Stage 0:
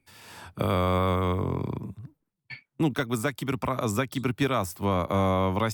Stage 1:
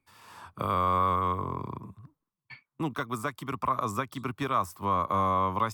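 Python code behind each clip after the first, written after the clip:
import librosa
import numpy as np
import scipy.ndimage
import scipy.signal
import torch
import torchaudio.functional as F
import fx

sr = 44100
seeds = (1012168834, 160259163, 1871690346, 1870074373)

y = fx.peak_eq(x, sr, hz=1100.0, db=14.0, octaves=0.51)
y = y * librosa.db_to_amplitude(-7.5)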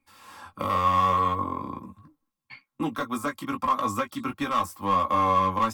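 y = np.clip(x, -10.0 ** (-21.0 / 20.0), 10.0 ** (-21.0 / 20.0))
y = y + 0.67 * np.pad(y, (int(3.7 * sr / 1000.0), 0))[:len(y)]
y = fx.chorus_voices(y, sr, voices=4, hz=0.4, base_ms=17, depth_ms=4.4, mix_pct=35)
y = y * librosa.db_to_amplitude(4.5)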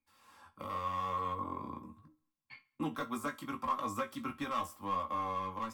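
y = fx.rider(x, sr, range_db=3, speed_s=0.5)
y = fx.comb_fb(y, sr, f0_hz=77.0, decay_s=0.22, harmonics='all', damping=0.0, mix_pct=60)
y = fx.echo_feedback(y, sr, ms=68, feedback_pct=50, wet_db=-23.0)
y = y * librosa.db_to_amplitude(-7.0)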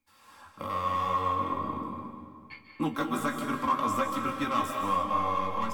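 y = fx.rev_freeverb(x, sr, rt60_s=2.0, hf_ratio=0.8, predelay_ms=110, drr_db=3.0)
y = y * librosa.db_to_amplitude(6.5)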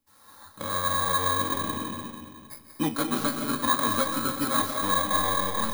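y = fx.bit_reversed(x, sr, seeds[0], block=16)
y = y * librosa.db_to_amplitude(3.0)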